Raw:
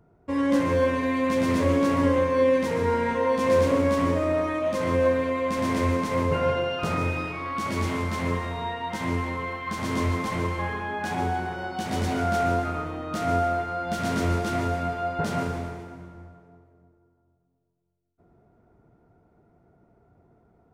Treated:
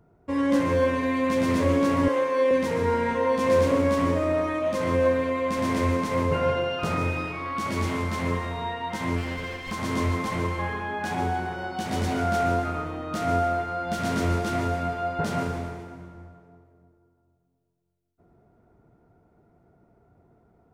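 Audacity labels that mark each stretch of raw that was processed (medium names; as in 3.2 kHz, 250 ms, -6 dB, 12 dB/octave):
2.080000	2.510000	high-pass 380 Hz
9.160000	9.720000	comb filter that takes the minimum delay 0.39 ms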